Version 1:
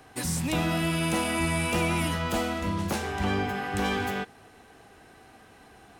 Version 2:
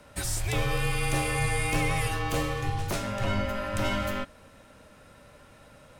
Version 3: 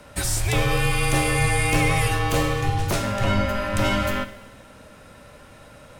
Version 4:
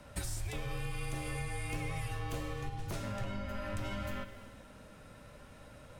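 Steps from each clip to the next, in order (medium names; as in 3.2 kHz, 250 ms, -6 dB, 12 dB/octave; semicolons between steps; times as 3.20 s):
frequency shift -190 Hz
Schroeder reverb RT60 1.1 s, combs from 33 ms, DRR 12.5 dB; trim +6.5 dB
bass shelf 240 Hz +5 dB; compression 6:1, threshold -26 dBFS, peak gain reduction 13 dB; flange 0.49 Hz, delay 1 ms, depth 6 ms, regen -70%; trim -5 dB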